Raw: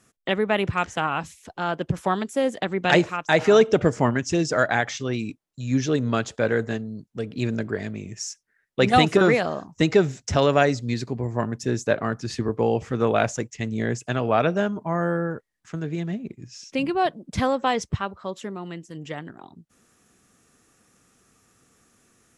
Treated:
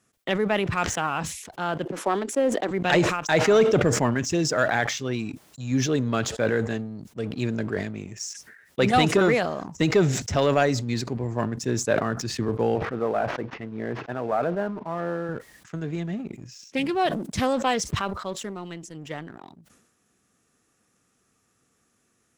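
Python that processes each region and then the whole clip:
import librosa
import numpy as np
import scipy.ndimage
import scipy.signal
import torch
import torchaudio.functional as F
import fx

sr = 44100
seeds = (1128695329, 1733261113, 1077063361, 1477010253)

y = fx.chain(x, sr, fx.self_delay(depth_ms=0.062),
    fx.highpass(hz=280.0, slope=24),
    fx.tilt_eq(slope=-2.5), at=(1.85, 2.71))
y = fx.chain(y, sr, fx.cvsd(bps=32000),
    fx.lowpass(hz=1500.0, slope=12),
    fx.low_shelf(hz=170.0, db=-12.0), at=(12.75, 15.29))
y = fx.chain(y, sr, fx.high_shelf(hz=4500.0, db=9.0),
    fx.doppler_dist(depth_ms=0.42), at=(16.76, 18.74))
y = fx.highpass(y, sr, hz=46.0, slope=6)
y = fx.leveller(y, sr, passes=1)
y = fx.sustainer(y, sr, db_per_s=59.0)
y = F.gain(torch.from_numpy(y), -5.5).numpy()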